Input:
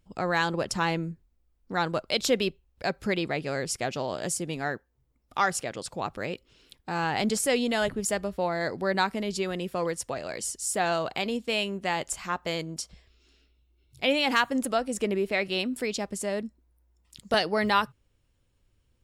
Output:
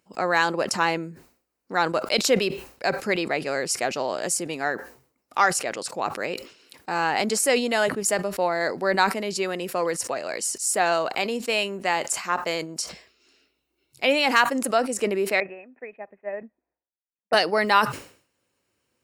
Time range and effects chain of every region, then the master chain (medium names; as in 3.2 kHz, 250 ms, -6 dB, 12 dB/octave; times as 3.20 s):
15.40–17.33 s: rippled Chebyshev low-pass 2.6 kHz, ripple 9 dB + upward expansion 2.5:1, over -55 dBFS
whole clip: Bessel high-pass 350 Hz, order 2; peaking EQ 3.4 kHz -9 dB 0.23 oct; decay stretcher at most 120 dB/s; trim +5.5 dB